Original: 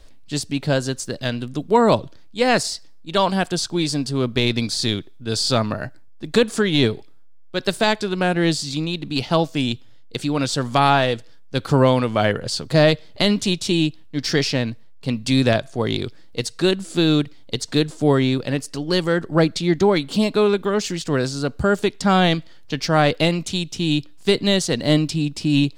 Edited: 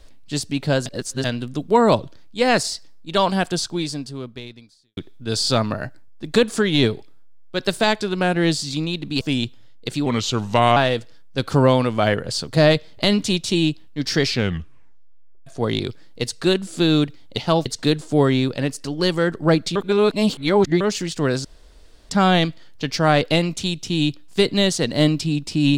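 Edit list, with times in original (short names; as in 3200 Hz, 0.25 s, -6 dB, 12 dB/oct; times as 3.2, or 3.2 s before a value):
0.86–1.24 reverse
3.56–4.97 fade out quadratic
9.21–9.49 move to 17.55
10.34–10.94 speed 85%
14.4 tape stop 1.24 s
19.65–20.7 reverse
21.34–21.99 room tone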